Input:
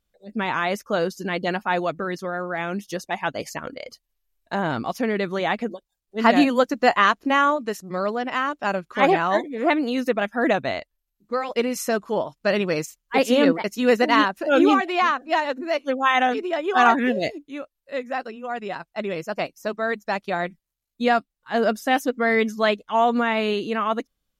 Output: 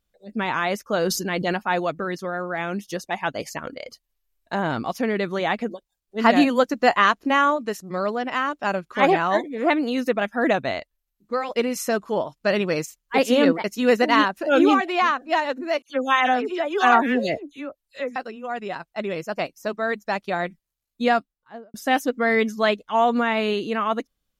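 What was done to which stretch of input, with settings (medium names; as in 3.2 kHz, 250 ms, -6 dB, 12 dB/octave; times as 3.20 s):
0.99–1.57 s: decay stretcher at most 46 dB/s
15.82–18.16 s: phase dispersion lows, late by 76 ms, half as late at 2.9 kHz
21.09–21.74 s: studio fade out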